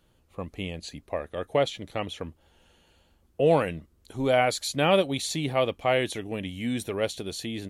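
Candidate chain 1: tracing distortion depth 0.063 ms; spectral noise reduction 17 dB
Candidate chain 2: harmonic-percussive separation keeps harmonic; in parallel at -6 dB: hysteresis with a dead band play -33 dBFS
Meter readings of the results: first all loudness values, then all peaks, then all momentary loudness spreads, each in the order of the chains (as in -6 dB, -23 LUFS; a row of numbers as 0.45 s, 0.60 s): -27.5 LUFS, -25.5 LUFS; -10.0 dBFS, -6.5 dBFS; 18 LU, 19 LU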